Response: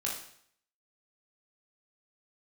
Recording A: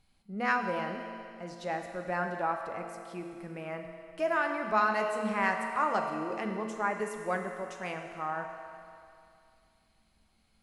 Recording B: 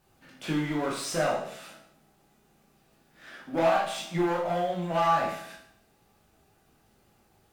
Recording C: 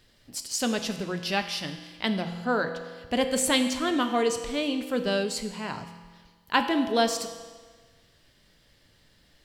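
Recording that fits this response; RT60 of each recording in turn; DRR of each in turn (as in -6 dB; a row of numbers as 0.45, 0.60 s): B; 2.5, 0.60, 1.5 s; 3.0, -4.0, 6.5 dB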